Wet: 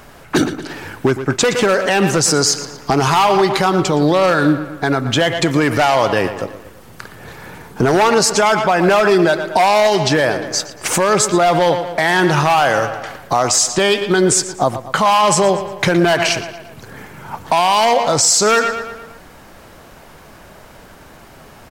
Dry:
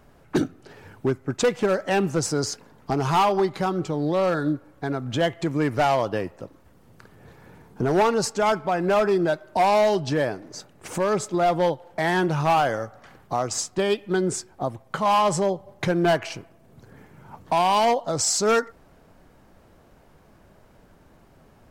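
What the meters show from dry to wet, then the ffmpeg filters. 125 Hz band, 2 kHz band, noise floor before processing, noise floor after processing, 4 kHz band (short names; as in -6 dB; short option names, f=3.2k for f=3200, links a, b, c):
+7.5 dB, +12.5 dB, -55 dBFS, -41 dBFS, +13.0 dB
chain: -filter_complex "[0:a]tiltshelf=f=770:g=-5,asplit=2[a][b];[b]adelay=116,lowpass=f=4.9k:p=1,volume=-14.5dB,asplit=2[c][d];[d]adelay=116,lowpass=f=4.9k:p=1,volume=0.53,asplit=2[e][f];[f]adelay=116,lowpass=f=4.9k:p=1,volume=0.53,asplit=2[g][h];[h]adelay=116,lowpass=f=4.9k:p=1,volume=0.53,asplit=2[i][j];[j]adelay=116,lowpass=f=4.9k:p=1,volume=0.53[k];[c][e][g][i][k]amix=inputs=5:normalize=0[l];[a][l]amix=inputs=2:normalize=0,alimiter=level_in=18.5dB:limit=-1dB:release=50:level=0:latency=1,volume=-3.5dB"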